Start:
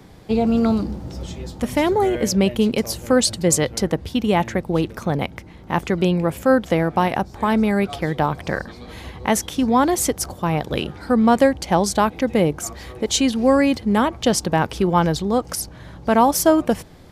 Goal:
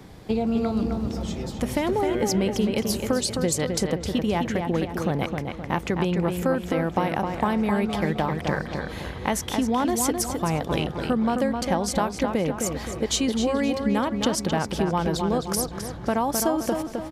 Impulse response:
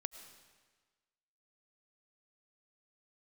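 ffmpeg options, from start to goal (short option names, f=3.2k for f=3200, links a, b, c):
-filter_complex "[0:a]acompressor=threshold=-21dB:ratio=6,asplit=2[a][b];[b]adelay=261,lowpass=f=3.8k:p=1,volume=-5dB,asplit=2[c][d];[d]adelay=261,lowpass=f=3.8k:p=1,volume=0.46,asplit=2[e][f];[f]adelay=261,lowpass=f=3.8k:p=1,volume=0.46,asplit=2[g][h];[h]adelay=261,lowpass=f=3.8k:p=1,volume=0.46,asplit=2[i][j];[j]adelay=261,lowpass=f=3.8k:p=1,volume=0.46,asplit=2[k][l];[l]adelay=261,lowpass=f=3.8k:p=1,volume=0.46[m];[c][e][g][i][k][m]amix=inputs=6:normalize=0[n];[a][n]amix=inputs=2:normalize=0"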